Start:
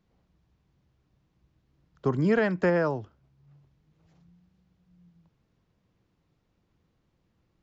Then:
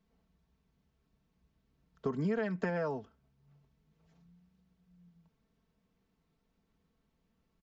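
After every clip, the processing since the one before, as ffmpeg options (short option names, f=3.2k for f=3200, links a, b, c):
-af "aecho=1:1:4.5:0.64,acompressor=threshold=-24dB:ratio=6,volume=-5.5dB"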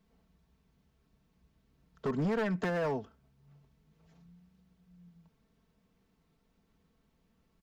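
-af "asoftclip=type=hard:threshold=-32dB,volume=4.5dB"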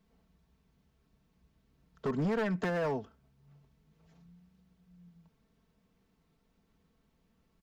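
-af anull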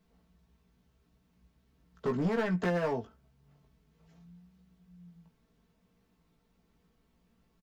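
-filter_complex "[0:a]asplit=2[a][b];[b]adelay=17,volume=-4.5dB[c];[a][c]amix=inputs=2:normalize=0"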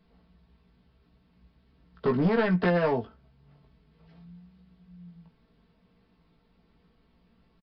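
-af "aresample=11025,aresample=44100,volume=6dB"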